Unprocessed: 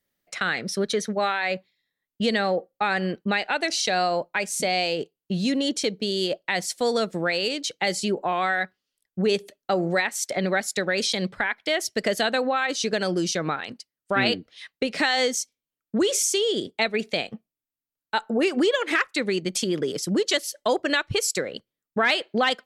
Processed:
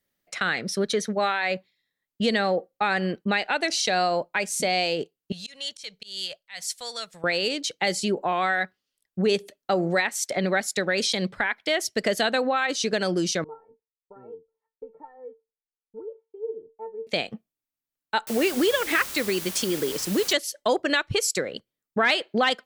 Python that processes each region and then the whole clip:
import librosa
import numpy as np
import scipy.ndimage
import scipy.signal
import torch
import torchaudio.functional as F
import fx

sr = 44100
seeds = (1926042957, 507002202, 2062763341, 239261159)

y = fx.chain(x, sr, fx.tone_stack(knobs='10-0-10'),
    fx.auto_swell(attack_ms=153.0), at=(5.32, 7.24))
y = fx.chain(y, sr, fx.cheby1_lowpass(hz=1000.0, order=4),
    fx.comb_fb(f0_hz=450.0, decay_s=0.17, harmonics='all', damping=0.0, mix_pct=100), at=(13.44, 17.07))
y = fx.chain(y, sr, fx.low_shelf(hz=130.0, db=-8.5),
    fx.quant_dither(seeds[0], bits=6, dither='triangular'), at=(18.27, 20.33))